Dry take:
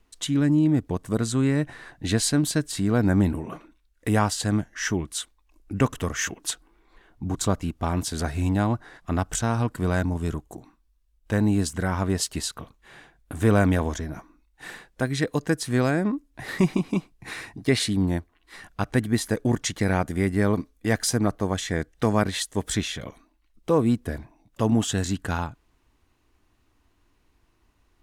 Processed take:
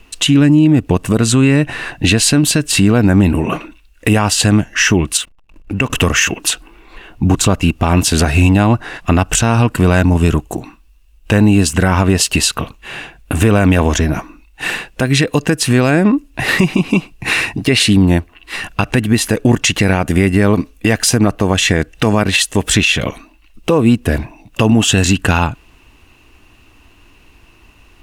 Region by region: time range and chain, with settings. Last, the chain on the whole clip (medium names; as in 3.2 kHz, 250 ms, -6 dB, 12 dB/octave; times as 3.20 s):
5.17–5.90 s: compression 2:1, threshold -40 dBFS + hysteresis with a dead band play -55.5 dBFS
whole clip: peaking EQ 2.7 kHz +14 dB 0.24 oct; compression 4:1, threshold -25 dBFS; loudness maximiser +19 dB; trim -1 dB